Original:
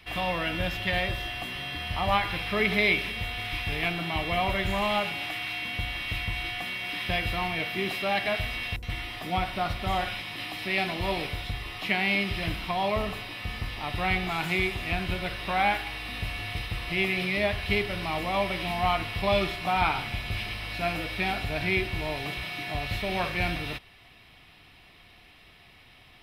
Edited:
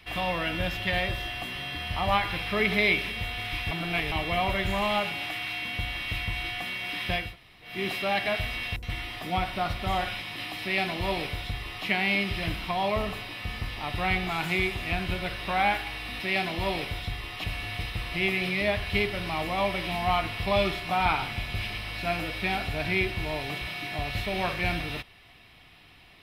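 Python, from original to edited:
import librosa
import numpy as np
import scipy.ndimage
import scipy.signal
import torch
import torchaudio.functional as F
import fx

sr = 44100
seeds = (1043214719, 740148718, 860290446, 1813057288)

y = fx.edit(x, sr, fx.reverse_span(start_s=3.71, length_s=0.41),
    fx.room_tone_fill(start_s=7.25, length_s=0.48, crossfade_s=0.24),
    fx.duplicate(start_s=10.62, length_s=1.24, to_s=16.2), tone=tone)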